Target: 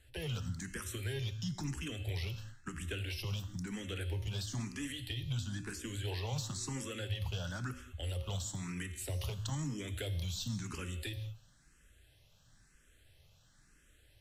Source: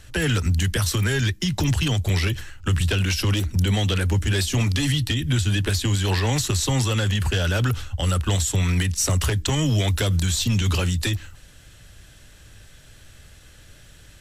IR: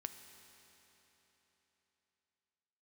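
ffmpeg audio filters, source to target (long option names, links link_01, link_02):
-filter_complex "[1:a]atrim=start_sample=2205,afade=type=out:start_time=0.35:duration=0.01,atrim=end_sample=15876,asetrate=61740,aresample=44100[link_01];[0:a][link_01]afir=irnorm=-1:irlink=0,asplit=2[link_02][link_03];[link_03]afreqshift=1[link_04];[link_02][link_04]amix=inputs=2:normalize=1,volume=-8dB"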